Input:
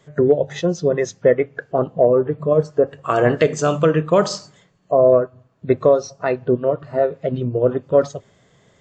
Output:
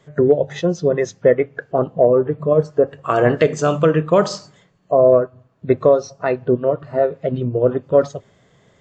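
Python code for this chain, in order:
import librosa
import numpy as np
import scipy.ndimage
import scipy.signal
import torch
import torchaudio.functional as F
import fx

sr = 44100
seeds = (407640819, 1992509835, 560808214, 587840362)

y = fx.high_shelf(x, sr, hz=5200.0, db=-5.5)
y = y * librosa.db_to_amplitude(1.0)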